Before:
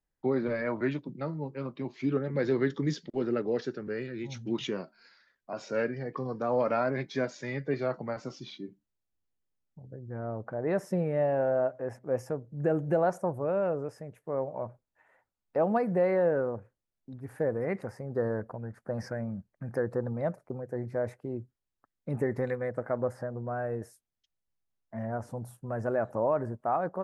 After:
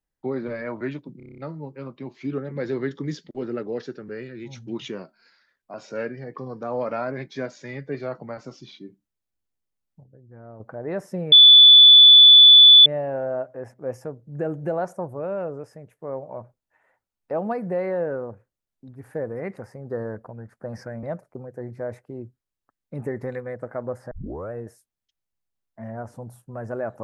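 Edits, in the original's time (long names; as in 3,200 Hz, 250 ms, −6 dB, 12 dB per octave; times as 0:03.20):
0:01.17: stutter 0.03 s, 8 plays
0:09.83–0:10.39: clip gain −7.5 dB
0:11.11: insert tone 3,470 Hz −6 dBFS 1.54 s
0:19.28–0:20.18: remove
0:23.26: tape start 0.41 s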